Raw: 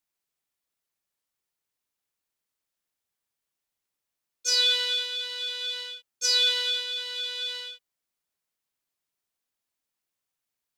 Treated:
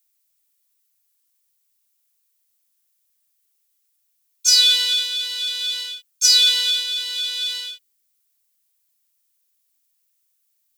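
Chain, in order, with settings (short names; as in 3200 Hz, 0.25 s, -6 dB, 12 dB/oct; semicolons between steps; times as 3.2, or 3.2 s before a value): tilt +5 dB/oct; gain -1.5 dB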